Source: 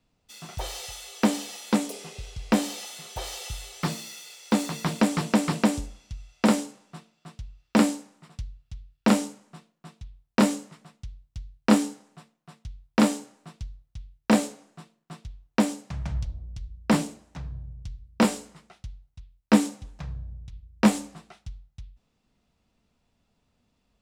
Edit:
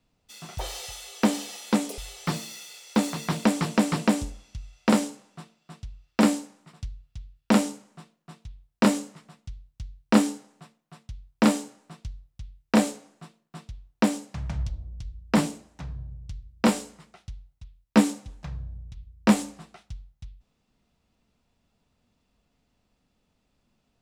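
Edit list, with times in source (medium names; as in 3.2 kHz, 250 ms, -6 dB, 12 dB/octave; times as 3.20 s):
1.98–3.54 s: delete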